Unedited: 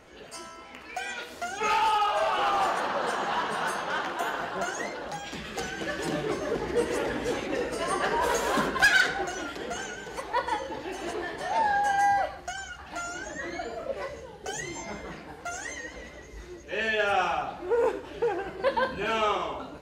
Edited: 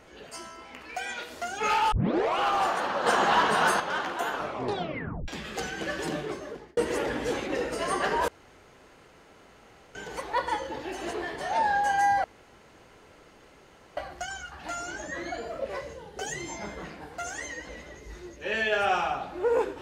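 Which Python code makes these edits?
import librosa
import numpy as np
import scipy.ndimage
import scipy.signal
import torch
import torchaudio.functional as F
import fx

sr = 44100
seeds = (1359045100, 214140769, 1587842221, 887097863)

y = fx.edit(x, sr, fx.tape_start(start_s=1.92, length_s=0.47),
    fx.clip_gain(start_s=3.06, length_s=0.74, db=6.5),
    fx.tape_stop(start_s=4.32, length_s=0.96),
    fx.fade_out_span(start_s=5.98, length_s=0.79),
    fx.room_tone_fill(start_s=8.28, length_s=1.67),
    fx.insert_room_tone(at_s=12.24, length_s=1.73), tone=tone)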